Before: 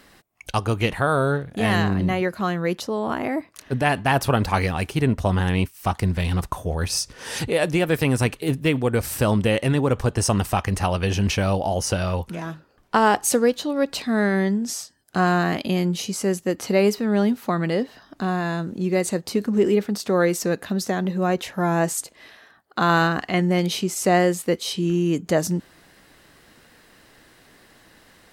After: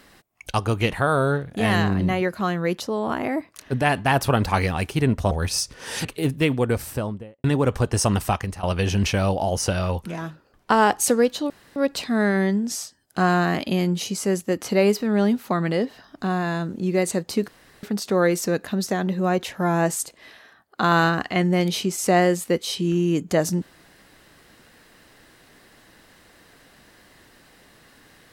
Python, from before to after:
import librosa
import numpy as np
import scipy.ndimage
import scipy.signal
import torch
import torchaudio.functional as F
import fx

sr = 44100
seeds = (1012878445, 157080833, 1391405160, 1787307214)

y = fx.studio_fade_out(x, sr, start_s=8.81, length_s=0.87)
y = fx.edit(y, sr, fx.cut(start_s=5.31, length_s=1.39),
    fx.cut(start_s=7.44, length_s=0.85),
    fx.fade_out_to(start_s=10.54, length_s=0.33, floor_db=-18.5),
    fx.insert_room_tone(at_s=13.74, length_s=0.26),
    fx.room_tone_fill(start_s=19.46, length_s=0.35), tone=tone)